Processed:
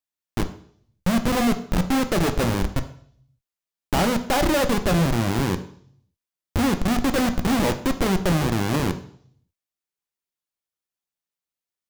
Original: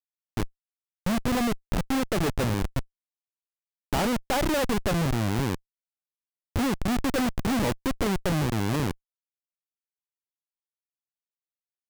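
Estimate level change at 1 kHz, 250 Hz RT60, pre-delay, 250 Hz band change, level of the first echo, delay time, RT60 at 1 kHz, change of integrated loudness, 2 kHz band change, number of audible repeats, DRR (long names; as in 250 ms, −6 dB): +5.0 dB, 0.60 s, 3 ms, +5.0 dB, no echo audible, no echo audible, 0.55 s, +4.5 dB, +4.5 dB, no echo audible, 8.0 dB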